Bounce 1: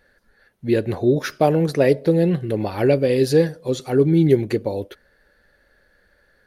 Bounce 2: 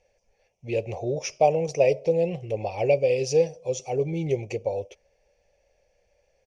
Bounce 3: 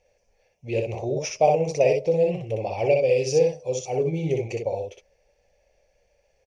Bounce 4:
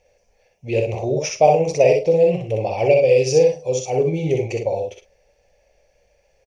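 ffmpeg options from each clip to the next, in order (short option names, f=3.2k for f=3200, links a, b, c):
-af "firequalizer=gain_entry='entry(110,0);entry(270,-13);entry(500,6);entry(750,7);entry(1500,-23);entry(2400,10);entry(4000,-10);entry(5700,14);entry(9100,-7);entry(14000,-30)':delay=0.05:min_phase=1,volume=-7.5dB"
-af "aecho=1:1:26|62:0.178|0.668"
-filter_complex "[0:a]asplit=2[a][b];[b]adelay=46,volume=-11.5dB[c];[a][c]amix=inputs=2:normalize=0,volume=5dB"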